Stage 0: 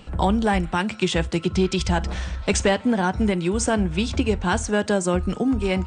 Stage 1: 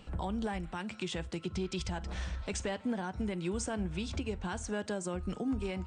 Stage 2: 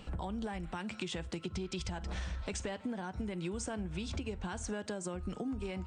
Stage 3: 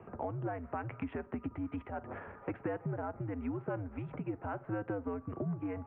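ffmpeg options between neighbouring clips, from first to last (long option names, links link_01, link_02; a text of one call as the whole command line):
ffmpeg -i in.wav -af "alimiter=limit=-17.5dB:level=0:latency=1:release=244,volume=-8.5dB" out.wav
ffmpeg -i in.wav -af "acompressor=threshold=-38dB:ratio=6,volume=3dB" out.wav
ffmpeg -i in.wav -filter_complex "[0:a]adynamicsmooth=sensitivity=7.5:basefreq=2000,acrossover=split=230 2000:gain=0.126 1 0.0708[link_01][link_02][link_03];[link_01][link_02][link_03]amix=inputs=3:normalize=0,highpass=frequency=150:width_type=q:width=0.5412,highpass=frequency=150:width_type=q:width=1.307,lowpass=frequency=2800:width_type=q:width=0.5176,lowpass=frequency=2800:width_type=q:width=0.7071,lowpass=frequency=2800:width_type=q:width=1.932,afreqshift=-96,volume=5dB" out.wav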